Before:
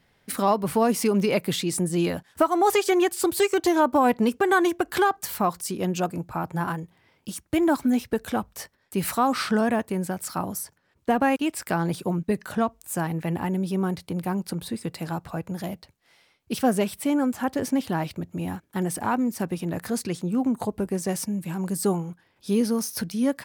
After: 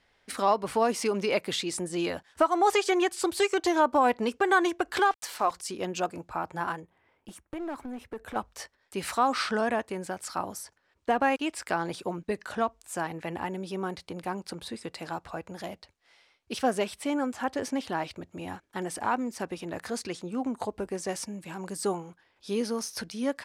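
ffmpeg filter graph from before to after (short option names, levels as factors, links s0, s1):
-filter_complex "[0:a]asettb=1/sr,asplit=3[s0][s1][s2];[s0]atrim=end=4.994[s3];[s1]atrim=start=4.99:end=5.51,asetpts=PTS-STARTPTS,afade=t=in:d=0.004:c=qsin,afade=t=out:st=0.516:d=0.004:c=qsin,highpass=310,acompressor=mode=upward:threshold=0.0355:ratio=2.5:attack=3.2:release=140:knee=2.83:detection=peak,aeval=exprs='val(0)*gte(abs(val(0)),0.01)':c=same[s4];[s2]atrim=start=5.506[s5];[s3][s4]acrossfade=d=0.004:c1=hsin:c2=qsin[s6];[s6][s5]acrossfade=d=0.004:c1=qsin:c2=hsin,asettb=1/sr,asplit=3[s7][s8][s9];[s7]atrim=end=6.814[s10];[s8]atrim=start=6.81:end=8.36,asetpts=PTS-STARTPTS,afade=t=in:d=0.004:c=qsin,afade=t=out:st=1.546:d=0.004:c=qsin,equalizer=f=5000:t=o:w=1.7:g=-14.5,acompressor=threshold=0.0501:ratio=12:attack=3.2:release=140:knee=1:detection=peak,aeval=exprs='clip(val(0),-1,0.0376)':c=same[s11];[s9]atrim=start=8.356[s12];[s10][s11]acrossfade=d=0.004:c1=hsin:c2=qsin[s13];[s13][s12]acrossfade=d=0.004:c1=qsin:c2=hsin,lowpass=7500,equalizer=f=150:w=0.83:g=-13,volume=0.891"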